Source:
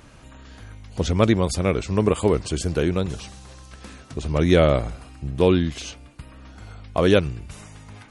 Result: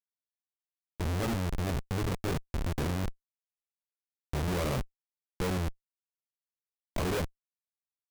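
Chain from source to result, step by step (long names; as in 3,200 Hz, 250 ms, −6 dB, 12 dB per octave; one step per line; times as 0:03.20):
multi-voice chorus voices 4, 0.54 Hz, delay 22 ms, depth 1 ms
comparator with hysteresis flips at −22 dBFS
level −5.5 dB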